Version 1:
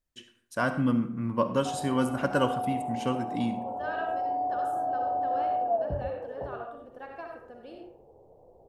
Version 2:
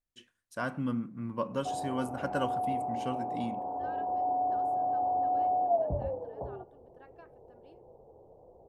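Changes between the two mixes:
first voice -5.5 dB; second voice -8.5 dB; reverb: off

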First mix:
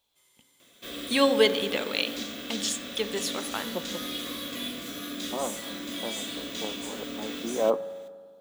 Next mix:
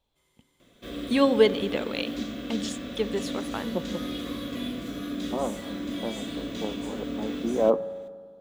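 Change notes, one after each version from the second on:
first voice: send -7.0 dB; master: add tilt -3 dB/oct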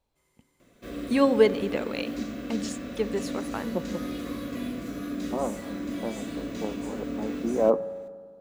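master: add bell 3400 Hz -11.5 dB 0.35 oct

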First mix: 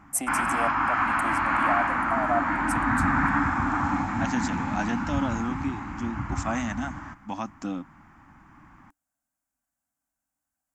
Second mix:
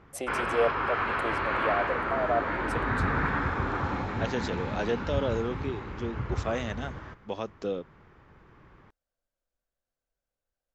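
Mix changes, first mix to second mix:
second voice: remove HPF 63 Hz; master: remove EQ curve 130 Hz 0 dB, 290 Hz +10 dB, 430 Hz -20 dB, 780 Hz +7 dB, 2300 Hz +3 dB, 3800 Hz -5 dB, 7900 Hz +15 dB

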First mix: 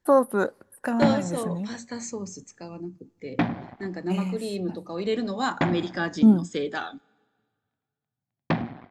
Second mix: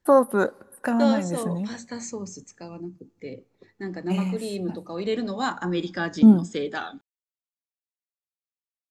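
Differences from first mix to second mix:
first voice: send +11.5 dB; background: muted

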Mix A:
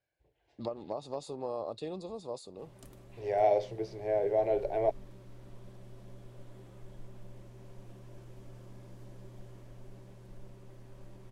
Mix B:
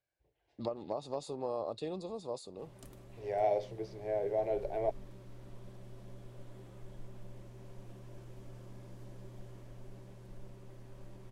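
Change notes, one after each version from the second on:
second voice -4.5 dB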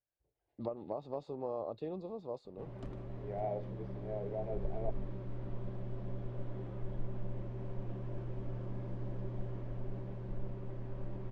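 second voice -5.5 dB; background +10.0 dB; master: add tape spacing loss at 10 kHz 35 dB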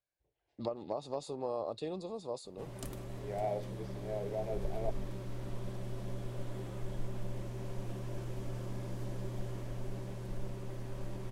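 master: remove tape spacing loss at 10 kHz 35 dB

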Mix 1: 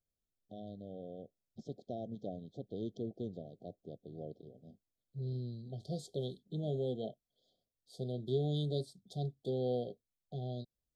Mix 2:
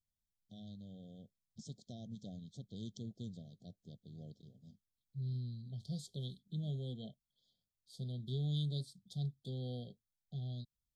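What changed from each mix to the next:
first voice: remove LPF 3100 Hz 12 dB/oct; master: add band shelf 690 Hz -15 dB 2.8 oct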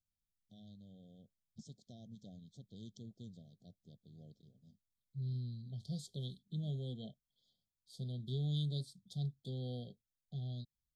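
first voice -5.5 dB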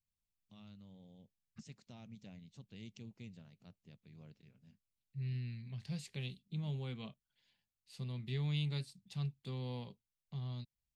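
master: remove brick-wall FIR band-stop 770–3100 Hz

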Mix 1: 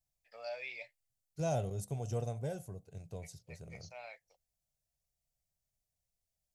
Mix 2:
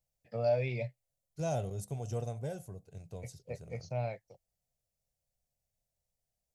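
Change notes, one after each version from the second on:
first voice: remove HPF 1300 Hz 12 dB/oct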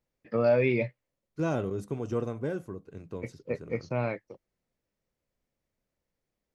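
first voice +3.0 dB; master: remove EQ curve 130 Hz 0 dB, 310 Hz -18 dB, 720 Hz +2 dB, 1100 Hz -16 dB, 8600 Hz +9 dB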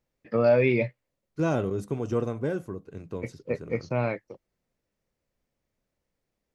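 first voice +3.0 dB; second voice +3.5 dB

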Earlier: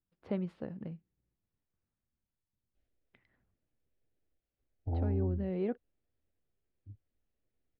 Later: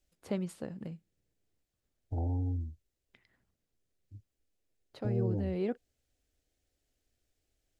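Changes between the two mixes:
second voice: entry -2.75 s; master: remove air absorption 330 m

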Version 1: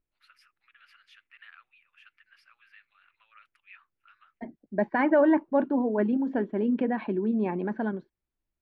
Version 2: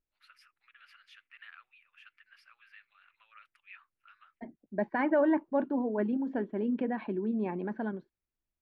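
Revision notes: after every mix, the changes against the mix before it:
second voice -5.0 dB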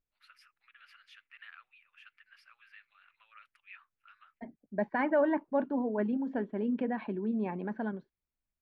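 master: add bell 340 Hz -6.5 dB 0.3 oct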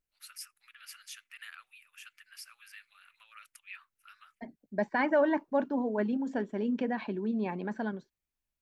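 master: remove air absorption 390 m

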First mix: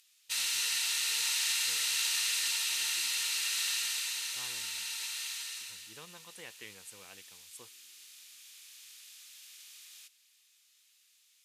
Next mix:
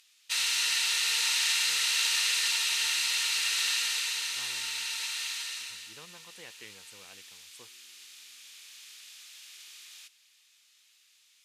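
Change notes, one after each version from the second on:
background +6.5 dB; master: add high shelf 8300 Hz -11 dB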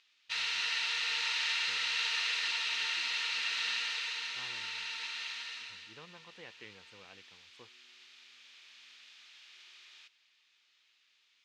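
master: add air absorption 210 m

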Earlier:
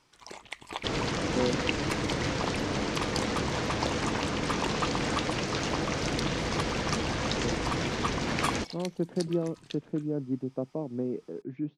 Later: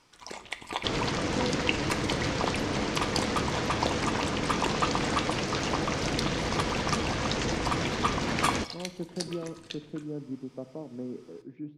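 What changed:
speech -8.5 dB; reverb: on, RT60 1.0 s

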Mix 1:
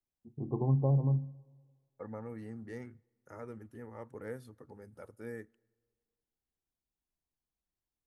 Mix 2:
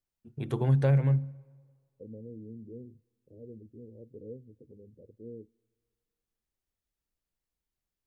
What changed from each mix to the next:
first voice: remove rippled Chebyshev low-pass 1100 Hz, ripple 6 dB; second voice: add steep low-pass 500 Hz 48 dB/oct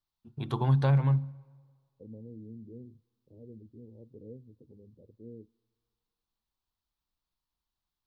master: add graphic EQ 500/1000/2000/4000/8000 Hz -7/+11/-6/+10/-7 dB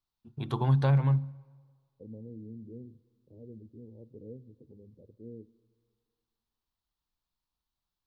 second voice: send +11.0 dB

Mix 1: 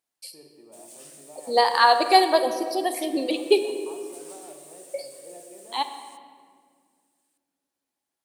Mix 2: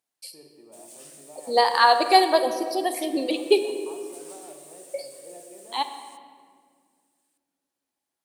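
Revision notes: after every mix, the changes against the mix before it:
none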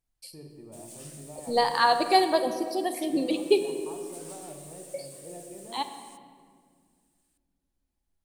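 second voice -5.0 dB; master: remove HPF 370 Hz 12 dB/oct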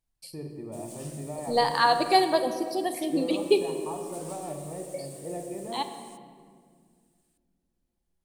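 first voice +8.0 dB

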